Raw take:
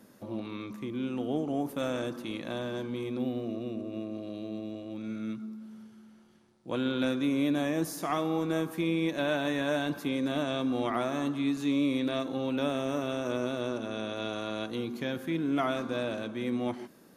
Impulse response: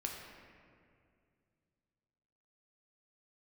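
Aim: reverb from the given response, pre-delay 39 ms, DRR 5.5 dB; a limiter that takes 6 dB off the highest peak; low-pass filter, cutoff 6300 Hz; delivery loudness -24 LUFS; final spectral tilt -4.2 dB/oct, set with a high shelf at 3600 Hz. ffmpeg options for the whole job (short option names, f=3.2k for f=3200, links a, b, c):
-filter_complex "[0:a]lowpass=6.3k,highshelf=f=3.6k:g=7.5,alimiter=limit=-20.5dB:level=0:latency=1,asplit=2[a][b];[1:a]atrim=start_sample=2205,adelay=39[c];[b][c]afir=irnorm=-1:irlink=0,volume=-6dB[d];[a][d]amix=inputs=2:normalize=0,volume=7.5dB"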